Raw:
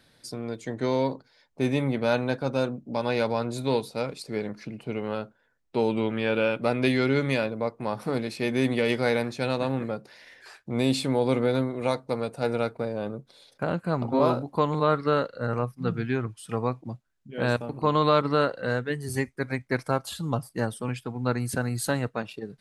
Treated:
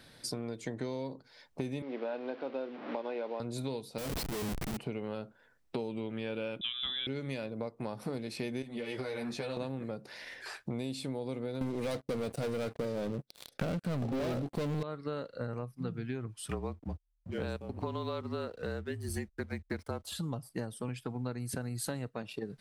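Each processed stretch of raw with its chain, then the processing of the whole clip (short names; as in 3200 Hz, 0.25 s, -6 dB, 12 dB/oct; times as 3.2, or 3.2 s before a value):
1.82–3.4 delta modulation 32 kbps, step -33 dBFS + HPF 290 Hz 24 dB/oct + air absorption 410 m
3.98–4.77 Schmitt trigger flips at -40.5 dBFS + high shelf 7000 Hz +6 dB
6.61–7.07 air absorption 84 m + inverted band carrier 3700 Hz
8.62–9.57 compressor 5:1, threshold -27 dBFS + ensemble effect
11.61–14.83 bell 960 Hz -14.5 dB 0.22 oct + sample leveller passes 5
16.48–20.12 backlash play -47 dBFS + frequency shift -38 Hz
whole clip: notch 6700 Hz, Q 29; dynamic EQ 1300 Hz, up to -6 dB, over -39 dBFS, Q 0.72; compressor 8:1, threshold -38 dBFS; gain +4 dB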